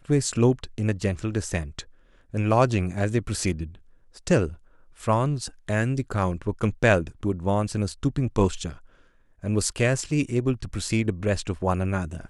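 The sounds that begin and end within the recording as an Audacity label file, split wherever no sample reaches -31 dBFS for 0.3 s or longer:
2.340000	3.660000	sound
4.270000	4.500000	sound
5.030000	8.720000	sound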